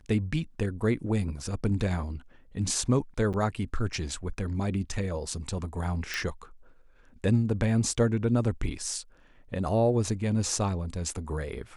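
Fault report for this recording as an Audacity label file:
3.330000	3.340000	drop-out 7.7 ms
6.140000	6.140000	click −16 dBFS

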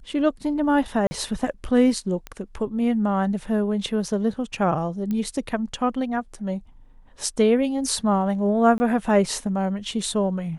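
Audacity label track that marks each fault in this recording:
1.070000	1.110000	drop-out 40 ms
2.270000	2.270000	click −19 dBFS
5.110000	5.110000	click −17 dBFS
8.780000	8.800000	drop-out 20 ms

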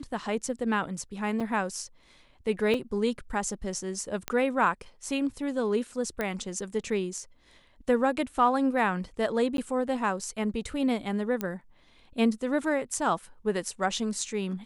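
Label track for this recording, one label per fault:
1.400000	1.410000	drop-out 5.1 ms
2.740000	2.740000	drop-out 3.1 ms
4.280000	4.280000	click −13 dBFS
6.210000	6.210000	click −16 dBFS
9.570000	9.580000	drop-out 12 ms
11.410000	11.410000	click −16 dBFS

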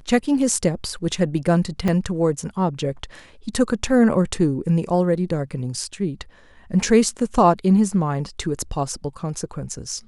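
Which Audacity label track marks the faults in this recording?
1.880000	1.880000	drop-out 4.3 ms

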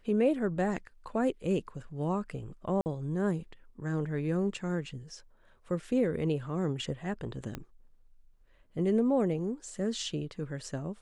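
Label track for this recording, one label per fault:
2.810000	2.860000	drop-out 49 ms
7.550000	7.550000	click −22 dBFS

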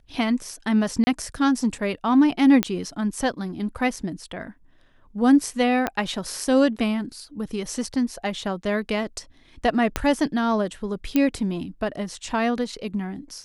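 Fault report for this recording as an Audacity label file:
1.040000	1.070000	drop-out 30 ms
2.630000	2.630000	click −6 dBFS
5.870000	5.870000	click −9 dBFS
9.960000	9.960000	click −7 dBFS
11.160000	11.160000	click −8 dBFS

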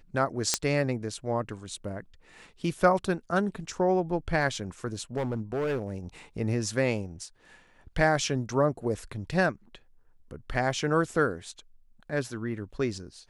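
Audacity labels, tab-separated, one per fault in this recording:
0.540000	0.540000	click −7 dBFS
5.160000	5.940000	clipping −25.5 dBFS

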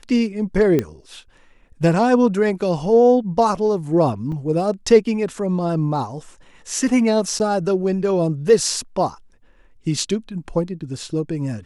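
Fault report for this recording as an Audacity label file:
0.790000	0.790000	click −8 dBFS
4.320000	4.320000	drop-out 3.3 ms
7.390000	7.400000	drop-out 9.8 ms

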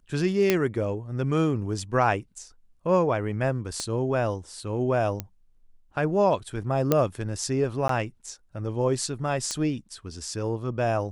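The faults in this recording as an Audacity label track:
0.500000	0.500000	click −6 dBFS
3.800000	3.800000	click −17 dBFS
5.200000	5.200000	click −14 dBFS
6.920000	6.920000	click −7 dBFS
7.880000	7.890000	drop-out 13 ms
9.510000	9.510000	click −15 dBFS

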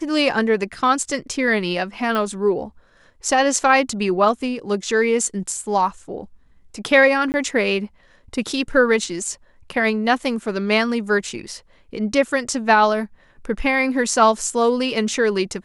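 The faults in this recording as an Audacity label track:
2.150000	2.150000	click −12 dBFS
7.320000	7.340000	drop-out 19 ms

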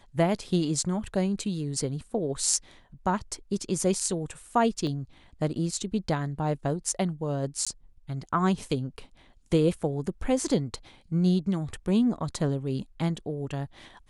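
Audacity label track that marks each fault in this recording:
4.870000	4.870000	drop-out 2 ms
7.650000	7.670000	drop-out 16 ms

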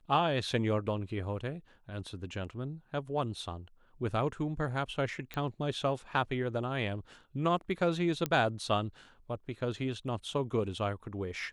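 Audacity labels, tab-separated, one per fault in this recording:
5.340000	5.340000	click −23 dBFS
8.260000	8.260000	click −16 dBFS

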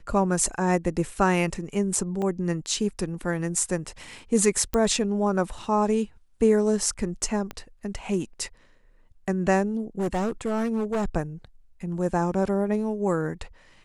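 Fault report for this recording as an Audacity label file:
2.220000	2.220000	drop-out 2.1 ms
4.740000	4.740000	click −12 dBFS
7.510000	7.510000	click −19 dBFS
9.990000	11.060000	clipping −22 dBFS

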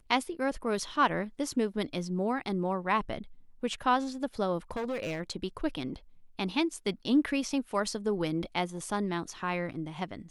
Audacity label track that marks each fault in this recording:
4.710000	5.200000	clipping −29.5 dBFS

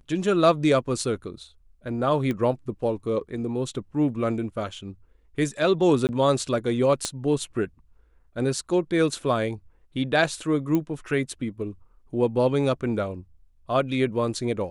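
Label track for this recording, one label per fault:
2.310000	2.310000	click −17 dBFS
6.070000	6.090000	drop-out 19 ms
7.050000	7.050000	click −12 dBFS
10.750000	10.750000	click −13 dBFS

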